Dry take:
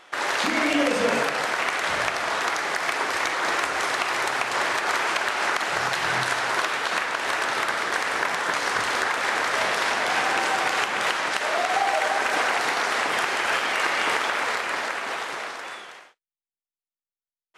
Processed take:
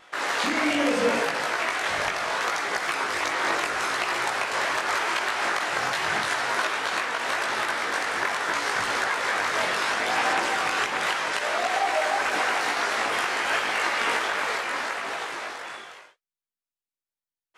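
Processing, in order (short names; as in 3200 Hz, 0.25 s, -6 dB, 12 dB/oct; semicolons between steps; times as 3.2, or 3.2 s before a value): wow and flutter 16 cents; chorus voices 2, 0.73 Hz, delay 19 ms, depth 2.2 ms; gain +1.5 dB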